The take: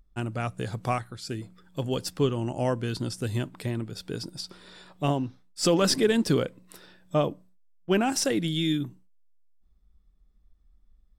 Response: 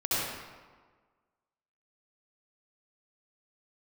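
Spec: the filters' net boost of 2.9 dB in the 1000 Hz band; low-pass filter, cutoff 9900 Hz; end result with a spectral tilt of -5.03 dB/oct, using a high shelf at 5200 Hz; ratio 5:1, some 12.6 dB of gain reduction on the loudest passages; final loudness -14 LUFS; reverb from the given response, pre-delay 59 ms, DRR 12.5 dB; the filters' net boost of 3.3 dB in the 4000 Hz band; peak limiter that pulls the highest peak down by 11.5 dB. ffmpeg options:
-filter_complex "[0:a]lowpass=9.9k,equalizer=f=1k:t=o:g=4,equalizer=f=4k:t=o:g=8,highshelf=f=5.2k:g=-7.5,acompressor=threshold=-32dB:ratio=5,alimiter=level_in=6dB:limit=-24dB:level=0:latency=1,volume=-6dB,asplit=2[a][b];[1:a]atrim=start_sample=2205,adelay=59[c];[b][c]afir=irnorm=-1:irlink=0,volume=-22.5dB[d];[a][d]amix=inputs=2:normalize=0,volume=26.5dB"

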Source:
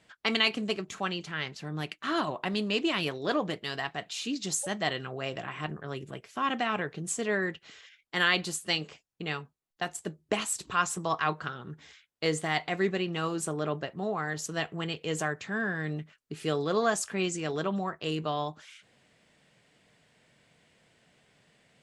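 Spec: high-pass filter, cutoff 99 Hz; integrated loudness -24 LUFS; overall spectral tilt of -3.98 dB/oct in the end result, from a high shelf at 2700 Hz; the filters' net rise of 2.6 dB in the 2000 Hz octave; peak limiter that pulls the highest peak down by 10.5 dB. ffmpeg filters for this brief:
-af "highpass=99,equalizer=f=2k:t=o:g=5,highshelf=f=2.7k:g=-4.5,volume=9.5dB,alimiter=limit=-10.5dB:level=0:latency=1"

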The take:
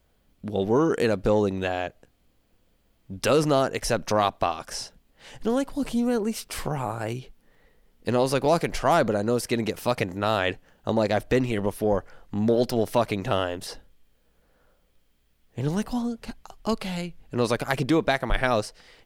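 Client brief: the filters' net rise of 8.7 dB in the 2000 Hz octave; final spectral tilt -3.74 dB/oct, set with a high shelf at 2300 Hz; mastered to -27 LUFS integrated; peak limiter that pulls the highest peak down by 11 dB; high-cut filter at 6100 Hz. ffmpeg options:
-af "lowpass=6.1k,equalizer=f=2k:t=o:g=8.5,highshelf=f=2.3k:g=5.5,volume=-1.5dB,alimiter=limit=-13dB:level=0:latency=1"

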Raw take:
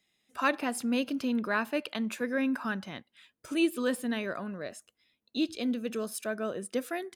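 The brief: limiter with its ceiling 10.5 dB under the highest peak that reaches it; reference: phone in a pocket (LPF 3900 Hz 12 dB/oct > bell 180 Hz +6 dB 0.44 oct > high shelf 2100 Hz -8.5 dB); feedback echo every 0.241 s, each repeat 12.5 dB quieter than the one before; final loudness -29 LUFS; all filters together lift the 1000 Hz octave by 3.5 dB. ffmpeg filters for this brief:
-af "equalizer=f=1k:t=o:g=6.5,alimiter=limit=-22dB:level=0:latency=1,lowpass=3.9k,equalizer=f=180:t=o:w=0.44:g=6,highshelf=f=2.1k:g=-8.5,aecho=1:1:241|482|723:0.237|0.0569|0.0137,volume=4dB"

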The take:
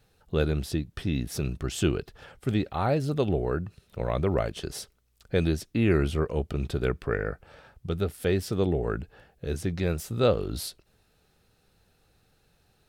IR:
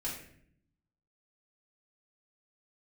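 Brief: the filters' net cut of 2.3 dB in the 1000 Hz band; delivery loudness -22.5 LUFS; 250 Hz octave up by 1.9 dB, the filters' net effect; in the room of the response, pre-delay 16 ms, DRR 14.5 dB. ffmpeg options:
-filter_complex "[0:a]equalizer=f=250:t=o:g=3,equalizer=f=1k:t=o:g=-3.5,asplit=2[a][b];[1:a]atrim=start_sample=2205,adelay=16[c];[b][c]afir=irnorm=-1:irlink=0,volume=-16.5dB[d];[a][d]amix=inputs=2:normalize=0,volume=5.5dB"

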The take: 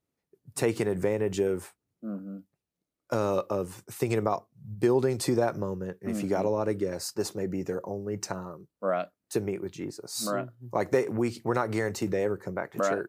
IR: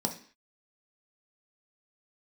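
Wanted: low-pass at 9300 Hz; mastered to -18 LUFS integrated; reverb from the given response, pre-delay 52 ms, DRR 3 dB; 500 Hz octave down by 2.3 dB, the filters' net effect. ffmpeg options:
-filter_complex "[0:a]lowpass=9.3k,equalizer=f=500:t=o:g=-3,asplit=2[a][b];[1:a]atrim=start_sample=2205,adelay=52[c];[b][c]afir=irnorm=-1:irlink=0,volume=-8.5dB[d];[a][d]amix=inputs=2:normalize=0,volume=9.5dB"

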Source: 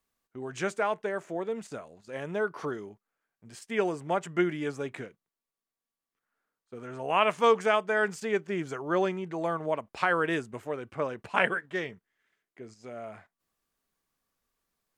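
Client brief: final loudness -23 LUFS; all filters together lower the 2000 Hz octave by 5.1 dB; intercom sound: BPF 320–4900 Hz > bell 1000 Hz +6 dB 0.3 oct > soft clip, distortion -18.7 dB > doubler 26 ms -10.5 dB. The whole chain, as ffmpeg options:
-filter_complex "[0:a]highpass=320,lowpass=4.9k,equalizer=f=1k:t=o:w=0.3:g=6,equalizer=f=2k:t=o:g=-7.5,asoftclip=threshold=-15.5dB,asplit=2[a][b];[b]adelay=26,volume=-10.5dB[c];[a][c]amix=inputs=2:normalize=0,volume=9dB"

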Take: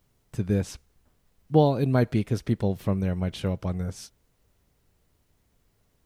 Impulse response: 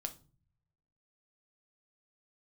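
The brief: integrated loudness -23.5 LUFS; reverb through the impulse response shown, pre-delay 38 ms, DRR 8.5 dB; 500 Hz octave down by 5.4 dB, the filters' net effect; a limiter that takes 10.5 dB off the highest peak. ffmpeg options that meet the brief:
-filter_complex "[0:a]equalizer=f=500:t=o:g=-6.5,alimiter=limit=-20.5dB:level=0:latency=1,asplit=2[a][b];[1:a]atrim=start_sample=2205,adelay=38[c];[b][c]afir=irnorm=-1:irlink=0,volume=-7dB[d];[a][d]amix=inputs=2:normalize=0,volume=7.5dB"

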